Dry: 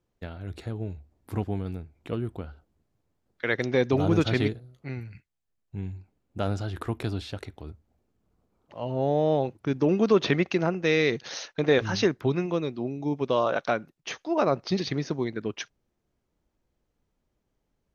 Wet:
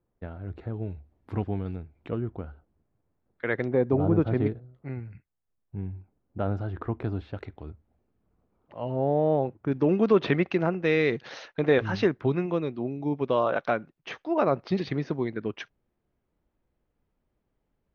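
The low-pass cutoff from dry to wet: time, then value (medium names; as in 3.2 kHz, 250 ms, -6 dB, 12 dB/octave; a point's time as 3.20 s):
1.5 kHz
from 0.74 s 2.9 kHz
from 2.10 s 1.8 kHz
from 3.68 s 1 kHz
from 4.46 s 1.5 kHz
from 7.34 s 2.4 kHz
from 8.96 s 1.6 kHz
from 9.72 s 2.7 kHz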